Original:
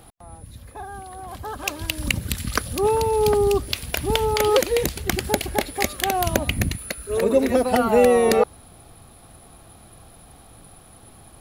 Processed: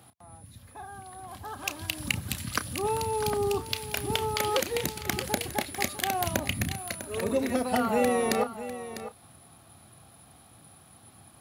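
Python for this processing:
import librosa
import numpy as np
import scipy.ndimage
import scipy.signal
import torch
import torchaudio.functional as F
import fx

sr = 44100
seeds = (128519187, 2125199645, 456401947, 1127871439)

y = scipy.signal.sosfilt(scipy.signal.butter(4, 83.0, 'highpass', fs=sr, output='sos'), x)
y = fx.peak_eq(y, sr, hz=450.0, db=-6.0, octaves=0.87)
y = fx.doubler(y, sr, ms=32.0, db=-13.0)
y = y + 10.0 ** (-12.5 / 20.0) * np.pad(y, (int(650 * sr / 1000.0), 0))[:len(y)]
y = y * librosa.db_to_amplitude(-5.5)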